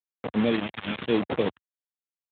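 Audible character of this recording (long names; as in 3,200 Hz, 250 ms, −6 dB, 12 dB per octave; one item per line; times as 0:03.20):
aliases and images of a low sample rate 2,900 Hz, jitter 0%
phaser sweep stages 2, 0.94 Hz, lowest notch 420–2,000 Hz
a quantiser's noise floor 6 bits, dither none
Speex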